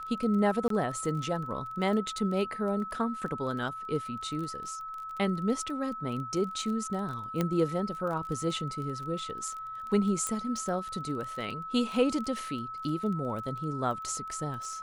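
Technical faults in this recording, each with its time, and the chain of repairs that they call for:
crackle 21 per s -36 dBFS
whine 1.3 kHz -37 dBFS
0.68–0.70 s: dropout 23 ms
7.41 s: pop -15 dBFS
10.27 s: pop -17 dBFS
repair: de-click; band-stop 1.3 kHz, Q 30; interpolate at 0.68 s, 23 ms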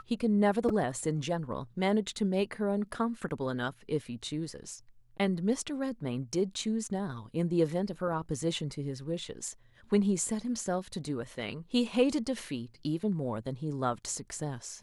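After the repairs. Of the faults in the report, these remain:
7.41 s: pop

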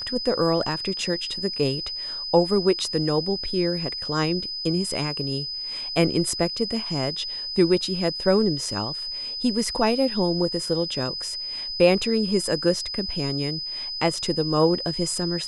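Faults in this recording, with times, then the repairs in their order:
whine 5 kHz -29 dBFS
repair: band-stop 5 kHz, Q 30

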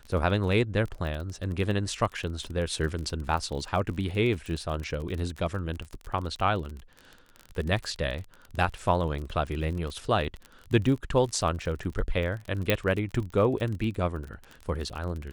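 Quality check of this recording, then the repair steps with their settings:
crackle 35 per s -33 dBFS
12.70 s: pop -8 dBFS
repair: de-click

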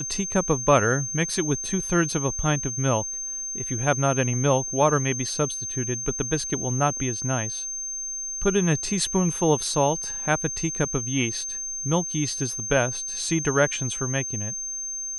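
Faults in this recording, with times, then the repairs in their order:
whine 6.3 kHz -29 dBFS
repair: band-stop 6.3 kHz, Q 30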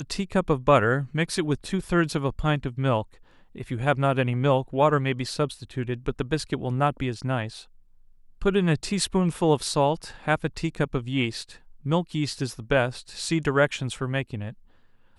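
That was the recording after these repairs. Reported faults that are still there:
nothing left

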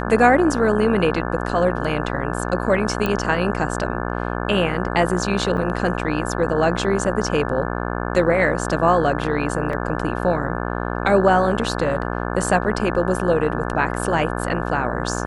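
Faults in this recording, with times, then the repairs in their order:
buzz 60 Hz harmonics 29 -25 dBFS
3.06 s: pop -9 dBFS
5.57–5.58 s: dropout 5.6 ms
9.73 s: dropout 2.8 ms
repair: de-click; de-hum 60 Hz, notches 29; interpolate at 5.57 s, 5.6 ms; interpolate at 9.73 s, 2.8 ms

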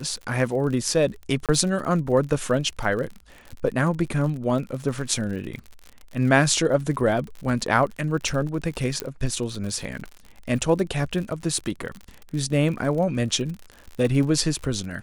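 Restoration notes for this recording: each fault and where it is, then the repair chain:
crackle 57 per s -31 dBFS
1.46–1.49 s: dropout 27 ms
9.00 s: pop -11 dBFS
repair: de-click; interpolate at 1.46 s, 27 ms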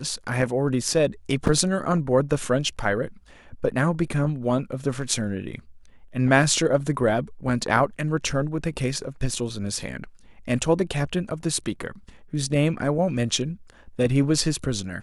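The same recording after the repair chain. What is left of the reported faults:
nothing left

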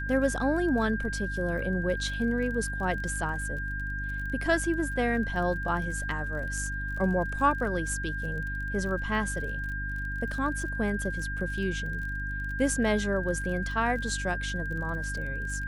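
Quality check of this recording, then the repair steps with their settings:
crackle 33 per s -37 dBFS
hum 50 Hz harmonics 6 -35 dBFS
whine 1.6 kHz -34 dBFS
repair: de-click; de-hum 50 Hz, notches 6; band-stop 1.6 kHz, Q 30

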